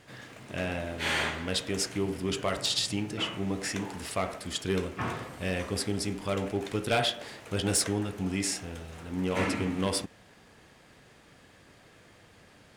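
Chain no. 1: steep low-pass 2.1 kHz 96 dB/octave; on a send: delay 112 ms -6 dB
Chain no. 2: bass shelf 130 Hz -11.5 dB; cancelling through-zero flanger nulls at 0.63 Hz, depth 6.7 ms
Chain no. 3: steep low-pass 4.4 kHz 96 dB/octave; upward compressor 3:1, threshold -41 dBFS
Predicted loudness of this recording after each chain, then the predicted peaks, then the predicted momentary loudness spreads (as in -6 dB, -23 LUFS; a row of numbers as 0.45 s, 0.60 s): -32.5 LUFS, -35.0 LUFS, -32.0 LUFS; -17.0 dBFS, -18.5 dBFS, -17.0 dBFS; 8 LU, 9 LU, 20 LU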